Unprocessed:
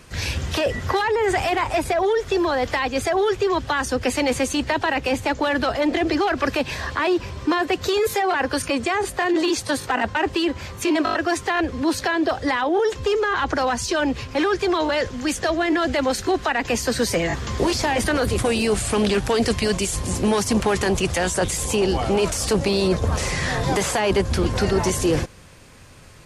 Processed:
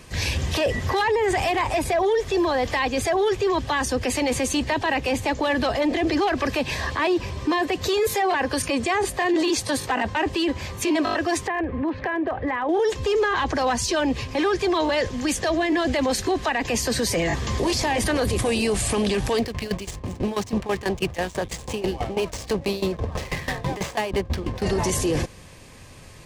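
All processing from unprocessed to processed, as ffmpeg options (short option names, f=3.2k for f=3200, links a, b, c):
-filter_complex "[0:a]asettb=1/sr,asplit=3[a][b][c];[a]atrim=end=11.474[d];[b]atrim=start=11.47:end=12.69,asetpts=PTS-STARTPTS,afade=t=in:d=0.004:c=qsin,afade=t=out:st=1.216:d=0.004:c=qsin,lowpass=f=2.3k:w=0.5412,lowpass=f=2.3k:w=1.3066,acompressor=threshold=-24dB:ratio=3:attack=3.2:release=140:knee=1:detection=peak,asoftclip=type=hard:threshold=-19.5dB[e];[c]atrim=start=12.686[f];[d][e]acrossfade=d=0.004:c1=hsin:c2=qsin[g];[g][f]acrossfade=d=0.004:c1=qsin:c2=hsin,asettb=1/sr,asplit=3[h][i][j];[h]atrim=end=19.384[k];[i]atrim=start=19.38:end=24.62,asetpts=PTS-STARTPTS,afade=t=in:d=0.004:c=qsin,afade=t=out:st=5.236:d=0.004:c=qsin,adynamicsmooth=sensitivity=5.5:basefreq=530,aeval=exprs='val(0)*pow(10,-18*if(lt(mod(6.1*n/s,1),2*abs(6.1)/1000),1-mod(6.1*n/s,1)/(2*abs(6.1)/1000),(mod(6.1*n/s,1)-2*abs(6.1)/1000)/(1-2*abs(6.1)/1000))/20)':c=same[l];[j]atrim=start=24.616[m];[k][l]acrossfade=d=0.004:c1=hsin:c2=qsin[n];[n][m]acrossfade=d=0.004:c1=qsin:c2=hsin,bandreject=f=1.4k:w=5.8,alimiter=limit=-16.5dB:level=0:latency=1:release=15,volume=1.5dB"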